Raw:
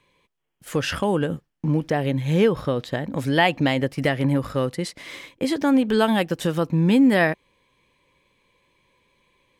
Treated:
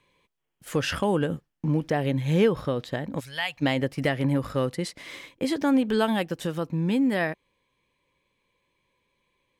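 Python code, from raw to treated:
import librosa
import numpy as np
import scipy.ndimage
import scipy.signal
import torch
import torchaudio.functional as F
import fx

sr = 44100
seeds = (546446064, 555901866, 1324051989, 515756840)

y = fx.rider(x, sr, range_db=10, speed_s=2.0)
y = fx.tone_stack(y, sr, knobs='10-0-10', at=(3.19, 3.61), fade=0.02)
y = F.gain(torch.from_numpy(y), -4.5).numpy()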